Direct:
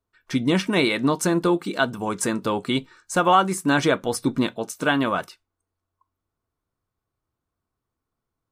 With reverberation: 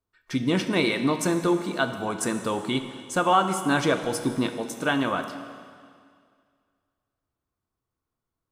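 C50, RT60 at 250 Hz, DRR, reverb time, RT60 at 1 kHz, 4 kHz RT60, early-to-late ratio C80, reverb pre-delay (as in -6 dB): 8.5 dB, 2.2 s, 7.5 dB, 2.1 s, 2.1 s, 2.1 s, 9.5 dB, 25 ms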